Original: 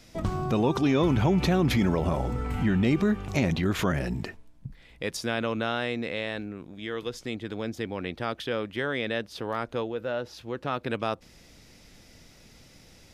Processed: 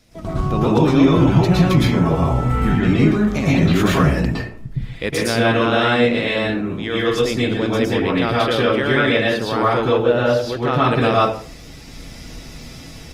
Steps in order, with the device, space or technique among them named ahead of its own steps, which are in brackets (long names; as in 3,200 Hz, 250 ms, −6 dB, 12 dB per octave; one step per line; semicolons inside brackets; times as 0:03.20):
speakerphone in a meeting room (convolution reverb RT60 0.50 s, pre-delay 106 ms, DRR −5.5 dB; automatic gain control gain up to 11 dB; level −1.5 dB; Opus 24 kbit/s 48,000 Hz)